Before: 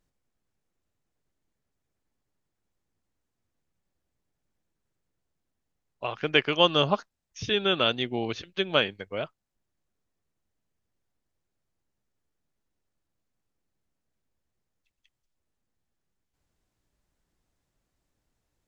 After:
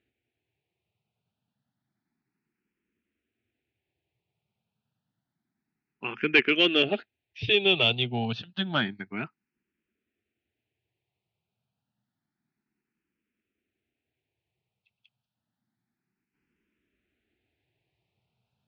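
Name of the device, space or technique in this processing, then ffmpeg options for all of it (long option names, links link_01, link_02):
barber-pole phaser into a guitar amplifier: -filter_complex "[0:a]asplit=2[link_01][link_02];[link_02]afreqshift=0.29[link_03];[link_01][link_03]amix=inputs=2:normalize=1,asoftclip=type=tanh:threshold=-17dB,highpass=110,equalizer=frequency=120:width_type=q:width=4:gain=5,equalizer=frequency=220:width_type=q:width=4:gain=5,equalizer=frequency=370:width_type=q:width=4:gain=3,equalizer=frequency=540:width_type=q:width=4:gain=-9,equalizer=frequency=1100:width_type=q:width=4:gain=-9,equalizer=frequency=2500:width_type=q:width=4:gain=7,lowpass=frequency=3900:width=0.5412,lowpass=frequency=3900:width=1.3066,volume=5dB"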